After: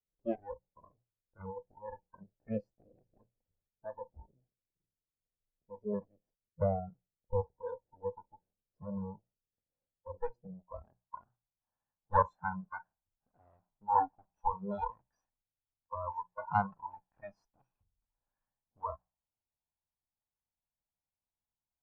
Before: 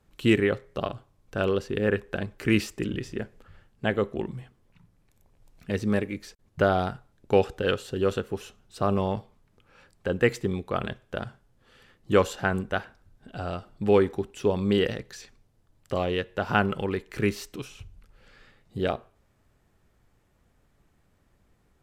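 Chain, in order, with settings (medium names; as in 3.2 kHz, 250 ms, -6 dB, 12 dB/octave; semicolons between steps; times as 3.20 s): comb filter that takes the minimum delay 1.2 ms; hum notches 60/120/180 Hz; spectral noise reduction 28 dB; low-pass sweep 490 Hz -> 1 kHz, 10.42–11.15 s; trim -6.5 dB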